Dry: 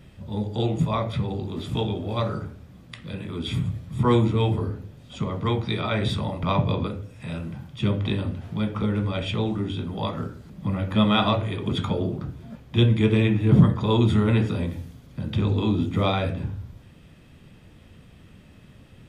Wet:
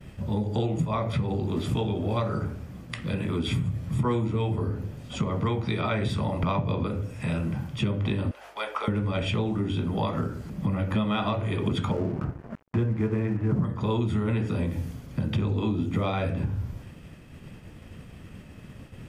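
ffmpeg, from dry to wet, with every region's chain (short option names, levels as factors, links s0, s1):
-filter_complex "[0:a]asettb=1/sr,asplit=3[s0][s1][s2];[s0]atrim=end=8.314[s3];[s1]atrim=start=8.31:end=8.88,asetpts=PTS-STARTPTS,afade=t=in:d=0.004:c=qsin,afade=t=out:st=0.566:d=0.004:c=qsin,highpass=f=580:w=0.5412,highpass=f=580:w=1.3066,aeval=exprs='val(0)+0.000282*(sin(2*PI*50*n/s)+sin(2*PI*2*50*n/s)/2+sin(2*PI*3*50*n/s)/3+sin(2*PI*4*50*n/s)/4+sin(2*PI*5*50*n/s)/5)':c=same[s4];[s2]atrim=start=8.876[s5];[s3][s4]acrossfade=d=0.004:c1=hsin:c2=qsin[s6];[s6][s5]acrossfade=d=0.004:c1=qsin:c2=hsin,asettb=1/sr,asplit=3[s7][s8][s9];[s7]atrim=end=11.914[s10];[s8]atrim=start=11.91:end=13.65,asetpts=PTS-STARTPTS,afade=t=in:d=0.004:c=qsin,afade=t=out:st=1.736:d=0.004:c=qsin,highshelf=f=2300:t=q:w=1.5:g=-14,aeval=exprs='sgn(val(0))*max(abs(val(0))-0.00841,0)':c=same[s11];[s9]atrim=start=13.646[s12];[s10][s11]acrossfade=d=0.004:c1=hsin:c2=qsin[s13];[s13][s12]acrossfade=d=0.004:c1=qsin:c2=hsin,agate=range=0.0224:threshold=0.00501:ratio=3:detection=peak,acompressor=threshold=0.0316:ratio=6,equalizer=f=3700:t=o:w=0.38:g=-6.5,volume=2.11"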